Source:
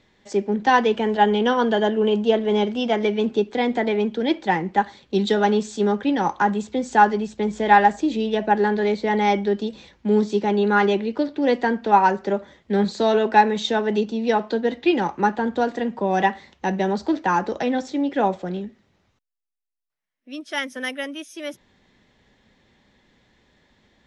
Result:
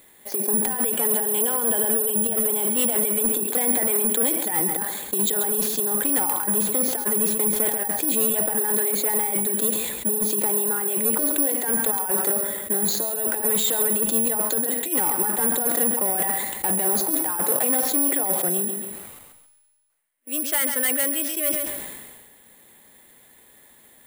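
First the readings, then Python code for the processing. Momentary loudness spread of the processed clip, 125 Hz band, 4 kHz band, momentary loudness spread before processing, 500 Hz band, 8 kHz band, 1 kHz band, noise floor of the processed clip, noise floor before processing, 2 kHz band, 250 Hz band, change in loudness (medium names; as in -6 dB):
4 LU, -7.5 dB, -2.0 dB, 11 LU, -6.5 dB, no reading, -12.0 dB, -53 dBFS, -66 dBFS, -7.5 dB, -7.0 dB, +1.0 dB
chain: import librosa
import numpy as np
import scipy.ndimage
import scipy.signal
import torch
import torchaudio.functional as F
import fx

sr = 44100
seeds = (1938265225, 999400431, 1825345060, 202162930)

y = fx.bass_treble(x, sr, bass_db=-10, treble_db=-4)
y = fx.over_compress(y, sr, threshold_db=-25.0, ratio=-0.5)
y = 10.0 ** (-23.0 / 20.0) * np.tanh(y / 10.0 ** (-23.0 / 20.0))
y = fx.echo_feedback(y, sr, ms=136, feedback_pct=24, wet_db=-13.0)
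y = (np.kron(scipy.signal.resample_poly(y, 1, 4), np.eye(4)[0]) * 4)[:len(y)]
y = fx.sustainer(y, sr, db_per_s=37.0)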